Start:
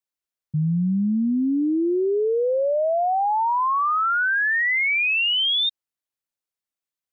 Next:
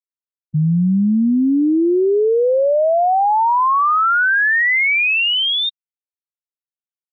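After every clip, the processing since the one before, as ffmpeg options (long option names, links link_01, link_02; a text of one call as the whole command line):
ffmpeg -i in.wav -af "highpass=frequency=120:width=0.5412,highpass=frequency=120:width=1.3066,afftfilt=real='re*gte(hypot(re,im),0.126)':imag='im*gte(hypot(re,im),0.126)':win_size=1024:overlap=0.75,lowpass=3200,volume=6.5dB" out.wav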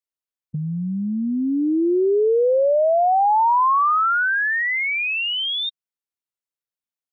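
ffmpeg -i in.wav -filter_complex "[0:a]acrossover=split=360|1100[link_01][link_02][link_03];[link_01]acompressor=threshold=-28dB:ratio=4[link_04];[link_02]acompressor=threshold=-18dB:ratio=4[link_05];[link_03]acompressor=threshold=-24dB:ratio=4[link_06];[link_04][link_05][link_06]amix=inputs=3:normalize=0" out.wav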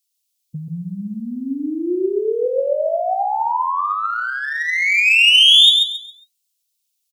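ffmpeg -i in.wav -filter_complex "[0:a]flanger=delay=5:depth=4.3:regen=55:speed=1.5:shape=sinusoidal,aexciter=amount=4.7:drive=9.7:freq=2500,asplit=2[link_01][link_02];[link_02]aecho=0:1:136|272|408|544:0.631|0.177|0.0495|0.0139[link_03];[link_01][link_03]amix=inputs=2:normalize=0" out.wav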